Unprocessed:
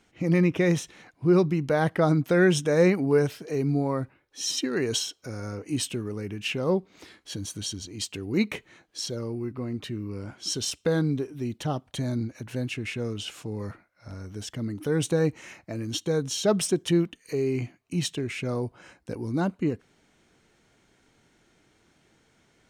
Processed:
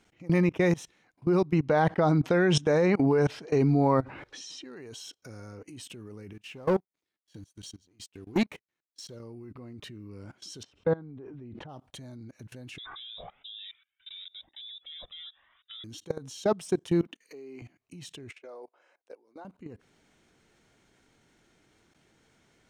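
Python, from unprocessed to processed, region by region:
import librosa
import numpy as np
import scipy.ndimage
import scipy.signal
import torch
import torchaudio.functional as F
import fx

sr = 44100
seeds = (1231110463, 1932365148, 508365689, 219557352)

y = fx.chain(x, sr, fx.lowpass(hz=5700.0, slope=12),
    fx.env_flatten(amount_pct=50), at=(1.53, 4.64))
y = fx.chain(y, sr, fx.leveller(passes=2),
    fx.upward_expand(threshold_db=-38.0, expansion=2.5), at=(6.33, 9.2))
y = fx.chain(y, sr, fx.lowpass(hz=1700.0, slope=12),
    fx.sustainer(db_per_s=40.0), at=(10.63, 11.69))
y = fx.chain(y, sr, fx.freq_invert(carrier_hz=3700),
    fx.comb_cascade(direction='rising', hz=1.1), at=(12.78, 15.84))
y = fx.chain(y, sr, fx.highpass(hz=210.0, slope=24),
    fx.peak_eq(hz=9400.0, db=-6.5, octaves=0.77), at=(17.03, 17.62))
y = fx.chain(y, sr, fx.ladder_highpass(hz=410.0, resonance_pct=35),
    fx.high_shelf(hz=5500.0, db=-11.0), at=(18.31, 19.45))
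y = fx.dynamic_eq(y, sr, hz=860.0, q=1.8, threshold_db=-43.0, ratio=4.0, max_db=6)
y = fx.level_steps(y, sr, step_db=22)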